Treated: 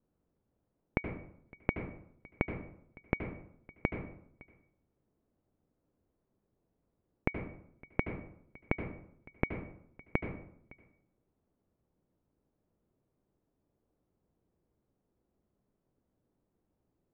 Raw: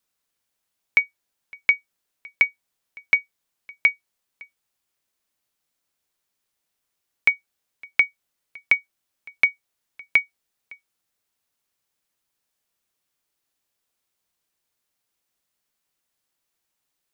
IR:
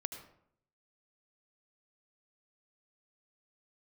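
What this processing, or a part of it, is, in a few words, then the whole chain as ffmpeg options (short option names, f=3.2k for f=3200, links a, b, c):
television next door: -filter_complex "[0:a]acompressor=threshold=-20dB:ratio=6,lowpass=370[a];[1:a]atrim=start_sample=2205[b];[a][b]afir=irnorm=-1:irlink=0,volume=17dB"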